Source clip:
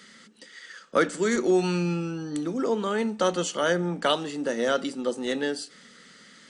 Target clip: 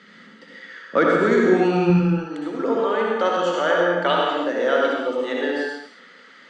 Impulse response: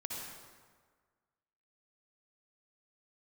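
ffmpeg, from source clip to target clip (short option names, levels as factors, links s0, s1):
-filter_complex "[0:a]asetnsamples=n=441:p=0,asendcmd='1.9 highpass f 400',highpass=120,lowpass=2700[s0];[1:a]atrim=start_sample=2205,afade=t=out:st=0.41:d=0.01,atrim=end_sample=18522[s1];[s0][s1]afir=irnorm=-1:irlink=0,volume=2.37"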